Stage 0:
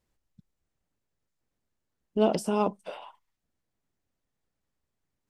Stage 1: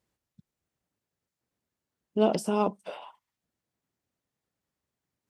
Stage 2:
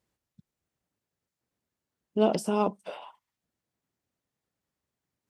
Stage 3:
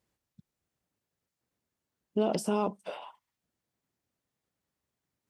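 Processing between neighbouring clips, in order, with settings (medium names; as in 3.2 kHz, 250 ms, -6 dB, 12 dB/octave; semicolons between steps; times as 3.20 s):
high-pass 83 Hz 12 dB/octave
no audible change
peak limiter -17.5 dBFS, peak gain reduction 7.5 dB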